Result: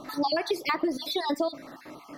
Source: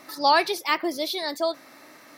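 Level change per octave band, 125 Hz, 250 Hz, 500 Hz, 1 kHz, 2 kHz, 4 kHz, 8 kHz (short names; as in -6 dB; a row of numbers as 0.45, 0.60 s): n/a, +2.0 dB, -2.5 dB, -7.5 dB, -7.0 dB, -5.5 dB, -7.0 dB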